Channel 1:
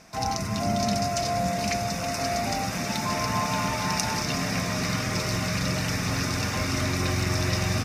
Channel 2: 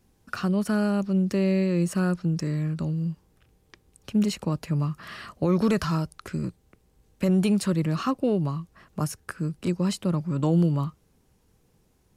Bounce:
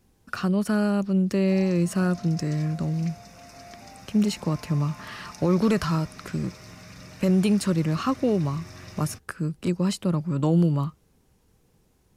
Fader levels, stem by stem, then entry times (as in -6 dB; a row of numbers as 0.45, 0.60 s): -18.0, +1.0 dB; 1.35, 0.00 s